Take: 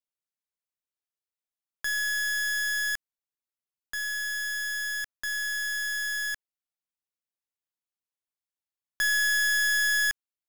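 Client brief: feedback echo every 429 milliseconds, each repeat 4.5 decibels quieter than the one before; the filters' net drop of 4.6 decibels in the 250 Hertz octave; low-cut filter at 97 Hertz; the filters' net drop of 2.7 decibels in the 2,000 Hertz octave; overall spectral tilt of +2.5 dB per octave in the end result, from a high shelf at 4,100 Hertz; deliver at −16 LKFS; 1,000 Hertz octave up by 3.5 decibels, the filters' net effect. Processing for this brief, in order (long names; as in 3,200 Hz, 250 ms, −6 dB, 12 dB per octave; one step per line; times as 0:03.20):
high-pass filter 97 Hz
parametric band 250 Hz −7.5 dB
parametric band 1,000 Hz +7.5 dB
parametric band 2,000 Hz −5 dB
high-shelf EQ 4,100 Hz −5.5 dB
repeating echo 429 ms, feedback 60%, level −4.5 dB
level +10.5 dB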